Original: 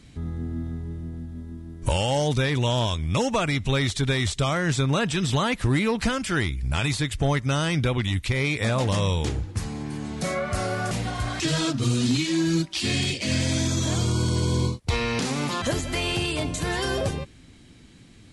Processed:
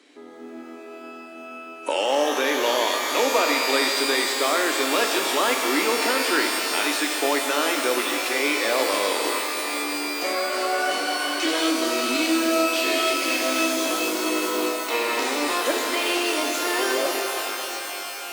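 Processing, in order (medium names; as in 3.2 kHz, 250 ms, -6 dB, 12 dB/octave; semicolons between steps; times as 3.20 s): steep high-pass 290 Hz 48 dB/octave; treble shelf 4.6 kHz -9 dB; pitch-shifted reverb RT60 3.8 s, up +12 st, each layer -2 dB, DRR 3 dB; trim +3 dB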